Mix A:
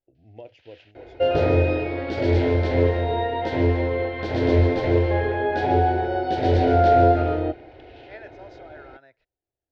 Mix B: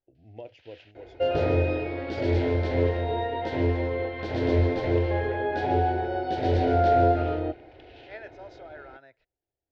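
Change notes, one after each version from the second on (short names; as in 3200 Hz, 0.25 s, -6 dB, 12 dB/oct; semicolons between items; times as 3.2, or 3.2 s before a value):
second sound -4.5 dB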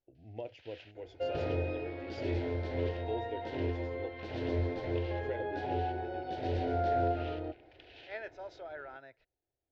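second sound -10.0 dB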